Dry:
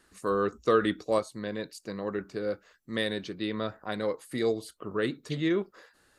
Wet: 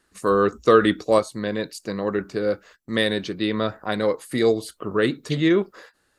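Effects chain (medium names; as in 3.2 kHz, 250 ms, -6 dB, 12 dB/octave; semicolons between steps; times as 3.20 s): gate -56 dBFS, range -11 dB; trim +8.5 dB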